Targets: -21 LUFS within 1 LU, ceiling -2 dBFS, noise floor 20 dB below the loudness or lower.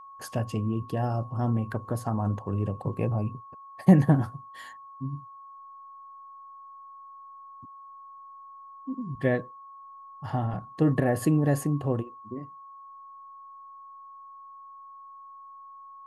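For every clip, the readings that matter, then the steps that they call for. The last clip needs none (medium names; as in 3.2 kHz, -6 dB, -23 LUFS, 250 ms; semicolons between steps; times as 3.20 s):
steady tone 1.1 kHz; tone level -44 dBFS; loudness -27.5 LUFS; peak level -6.0 dBFS; loudness target -21.0 LUFS
-> band-stop 1.1 kHz, Q 30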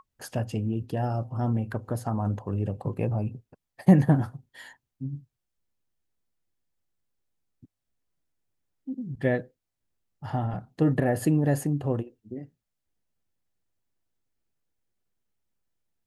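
steady tone not found; loudness -27.5 LUFS; peak level -6.0 dBFS; loudness target -21.0 LUFS
-> trim +6.5 dB; peak limiter -2 dBFS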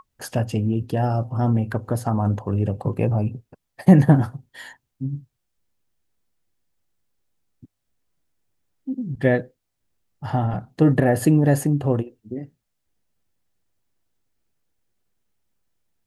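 loudness -21.5 LUFS; peak level -2.0 dBFS; noise floor -77 dBFS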